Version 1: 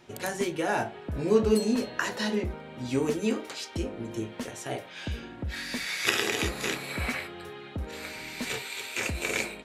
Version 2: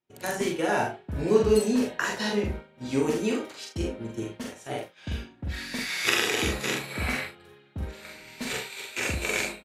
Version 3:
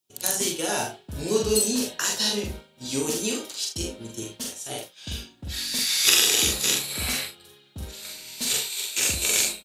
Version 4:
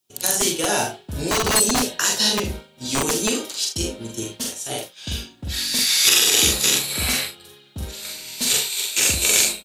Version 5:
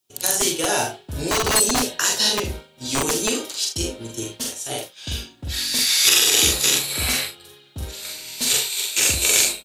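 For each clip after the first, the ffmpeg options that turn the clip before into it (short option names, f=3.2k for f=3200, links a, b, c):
-filter_complex "[0:a]agate=range=-33dB:threshold=-32dB:ratio=3:detection=peak,asplit=2[a][b];[b]aecho=0:1:43.73|78.72:0.794|0.316[c];[a][c]amix=inputs=2:normalize=0"
-af "aexciter=amount=4.1:drive=7.6:freq=3k,volume=-3dB"
-filter_complex "[0:a]acrossover=split=640[a][b];[a]aeval=exprs='(mod(12.6*val(0)+1,2)-1)/12.6':c=same[c];[c][b]amix=inputs=2:normalize=0,alimiter=level_in=8dB:limit=-1dB:release=50:level=0:latency=1,volume=-2.5dB"
-af "equalizer=f=200:t=o:w=0.27:g=-8.5"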